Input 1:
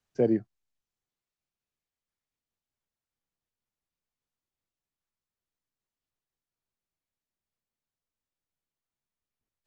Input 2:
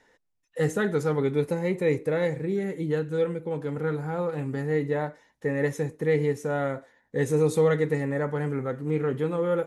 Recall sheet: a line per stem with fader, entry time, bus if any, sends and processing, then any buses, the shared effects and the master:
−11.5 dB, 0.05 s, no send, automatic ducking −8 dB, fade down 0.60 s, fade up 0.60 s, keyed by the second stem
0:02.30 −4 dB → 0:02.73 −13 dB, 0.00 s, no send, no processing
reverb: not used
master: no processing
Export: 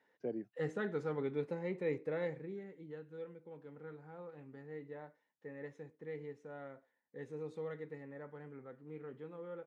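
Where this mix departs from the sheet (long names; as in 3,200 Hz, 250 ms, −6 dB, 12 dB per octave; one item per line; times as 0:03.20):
stem 2 −4.0 dB → −12.0 dB
master: extra band-pass filter 160–3,600 Hz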